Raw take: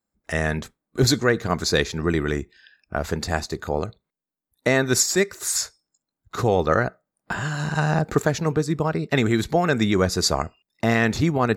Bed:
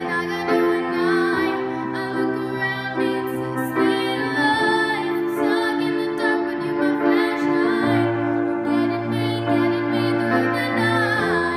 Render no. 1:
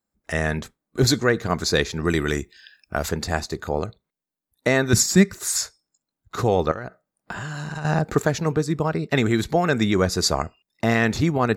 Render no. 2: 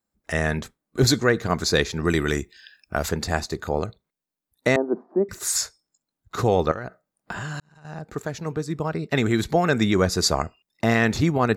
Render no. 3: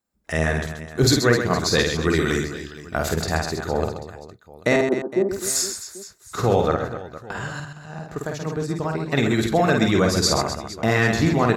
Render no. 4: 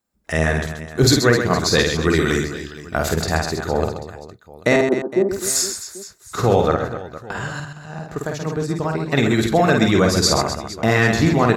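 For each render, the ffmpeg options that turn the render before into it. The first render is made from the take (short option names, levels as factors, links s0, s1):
-filter_complex "[0:a]asettb=1/sr,asplit=3[s0][s1][s2];[s0]atrim=end=2.054[s3];[s1]atrim=start=2.05:end=3.09,asetpts=PTS-STARTPTS,afade=t=in:d=0.004:c=qsin,afade=t=out:st=1.036:d=0.004:c=qsin,highshelf=f=3200:g=11[s4];[s2]atrim=start=3.086[s5];[s3][s4]acrossfade=d=0.004:c1=hsin:c2=qsin[s6];[s6][s5]acrossfade=d=0.004:c1=qsin:c2=hsin,asettb=1/sr,asplit=3[s7][s8][s9];[s7]atrim=end=4.934[s10];[s8]atrim=start=4.93:end=5.38,asetpts=PTS-STARTPTS,afade=t=in:d=0.004:c=qsin,afade=t=out:st=0.446:d=0.004:c=qsin,lowshelf=f=300:t=q:w=1.5:g=10.5[s11];[s9]atrim=start=5.376[s12];[s10][s11]acrossfade=d=0.004:c1=hsin:c2=qsin[s13];[s13][s12]acrossfade=d=0.004:c1=qsin:c2=hsin,asettb=1/sr,asplit=3[s14][s15][s16];[s14]atrim=end=6.714[s17];[s15]atrim=start=6.71:end=7.85,asetpts=PTS-STARTPTS,afade=t=in:d=0.004:c=qsin,afade=t=out:st=1.136:d=0.004:c=qsin,acompressor=threshold=0.0447:ratio=12:attack=3.2:release=140:knee=1:detection=peak[s18];[s16]atrim=start=7.846[s19];[s17][s18]acrossfade=d=0.004:c1=hsin:c2=qsin[s20];[s20][s19]acrossfade=d=0.004:c1=qsin:c2=hsin"
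-filter_complex "[0:a]asettb=1/sr,asplit=3[s0][s1][s2];[s0]atrim=end=4.764[s3];[s1]atrim=start=4.76:end=5.29,asetpts=PTS-STARTPTS,afade=t=in:d=0.004:c=qsin,afade=t=out:st=0.526:d=0.004:c=qsin,asuperpass=centerf=500:order=8:qfactor=0.72[s4];[s2]atrim=start=5.286[s5];[s3][s4]acrossfade=d=0.004:c1=hsin:c2=qsin[s6];[s6][s5]acrossfade=d=0.004:c1=qsin:c2=hsin,asplit=2[s7][s8];[s7]atrim=end=7.6,asetpts=PTS-STARTPTS,afade=t=out:st=7.596:d=0.004:c=hsin[s9];[s8]atrim=start=7.6,asetpts=PTS-STARTPTS,afade=t=in:d=1.91[s10];[s9][s10]concat=n=2:v=0:a=1"
-af "aecho=1:1:50|130|258|462.8|790.5:0.631|0.398|0.251|0.158|0.1"
-af "volume=1.41,alimiter=limit=0.794:level=0:latency=1"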